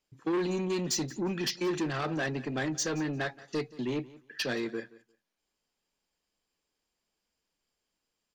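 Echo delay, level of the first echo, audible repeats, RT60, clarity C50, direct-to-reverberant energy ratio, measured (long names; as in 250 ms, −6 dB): 176 ms, −20.0 dB, 2, no reverb audible, no reverb audible, no reverb audible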